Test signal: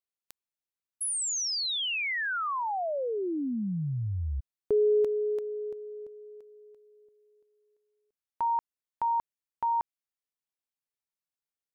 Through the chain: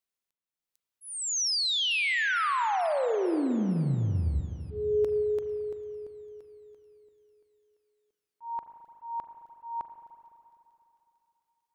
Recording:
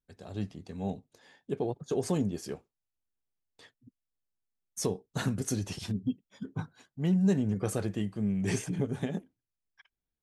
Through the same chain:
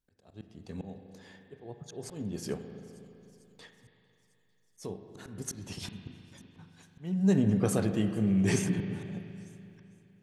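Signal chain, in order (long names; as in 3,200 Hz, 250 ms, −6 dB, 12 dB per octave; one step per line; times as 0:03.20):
delay with a high-pass on its return 449 ms, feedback 66%, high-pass 4,200 Hz, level −22 dB
volume swells 411 ms
spring reverb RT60 3 s, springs 36/42 ms, chirp 25 ms, DRR 7 dB
level +3 dB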